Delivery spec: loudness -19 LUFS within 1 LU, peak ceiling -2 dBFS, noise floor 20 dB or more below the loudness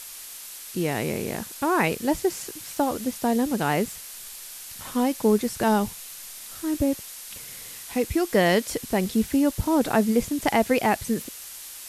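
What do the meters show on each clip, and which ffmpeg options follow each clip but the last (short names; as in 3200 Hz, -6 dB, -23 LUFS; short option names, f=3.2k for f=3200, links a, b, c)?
noise floor -40 dBFS; noise floor target -45 dBFS; loudness -24.5 LUFS; peak -6.5 dBFS; loudness target -19.0 LUFS
-> -af "afftdn=nr=6:nf=-40"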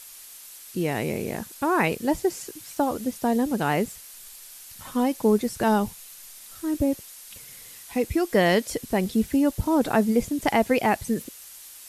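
noise floor -45 dBFS; loudness -25.0 LUFS; peak -7.0 dBFS; loudness target -19.0 LUFS
-> -af "volume=6dB,alimiter=limit=-2dB:level=0:latency=1"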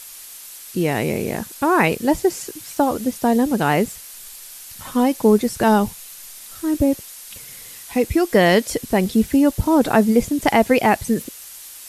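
loudness -19.0 LUFS; peak -2.0 dBFS; noise floor -39 dBFS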